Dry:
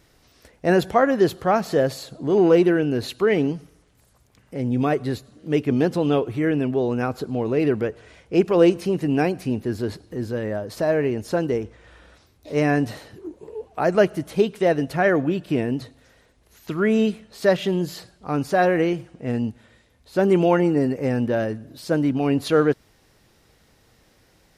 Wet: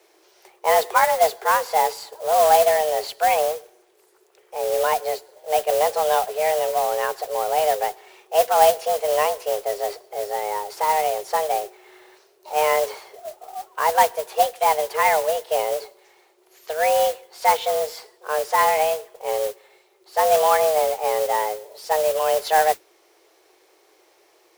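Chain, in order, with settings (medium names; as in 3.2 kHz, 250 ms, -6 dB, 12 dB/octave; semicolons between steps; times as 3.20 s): frequency shift +310 Hz; modulation noise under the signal 13 dB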